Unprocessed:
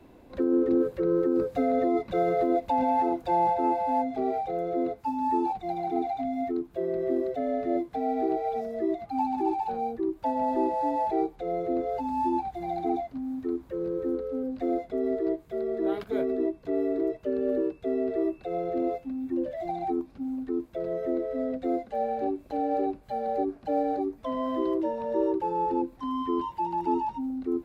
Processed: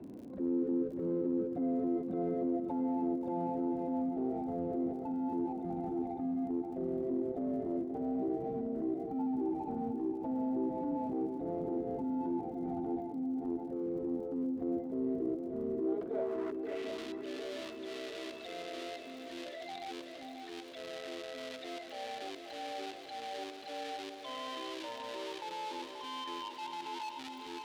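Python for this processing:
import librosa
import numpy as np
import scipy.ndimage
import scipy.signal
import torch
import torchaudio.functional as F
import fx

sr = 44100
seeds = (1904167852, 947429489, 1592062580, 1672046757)

p1 = scipy.signal.sosfilt(scipy.signal.butter(2, 70.0, 'highpass', fs=sr, output='sos'), x)
p2 = fx.schmitt(p1, sr, flips_db=-27.0)
p3 = p1 + (p2 * 10.0 ** (-11.0 / 20.0))
p4 = fx.filter_sweep_bandpass(p3, sr, from_hz=230.0, to_hz=3500.0, start_s=15.7, end_s=16.91, q=1.7)
p5 = fx.dmg_crackle(p4, sr, seeds[0], per_s=51.0, level_db=-57.0)
p6 = fx.transient(p5, sr, attack_db=-7, sustain_db=-2)
p7 = p6 + fx.echo_swing(p6, sr, ms=709, ratio=3, feedback_pct=47, wet_db=-11, dry=0)
p8 = fx.env_flatten(p7, sr, amount_pct=50)
y = p8 * 10.0 ** (-5.5 / 20.0)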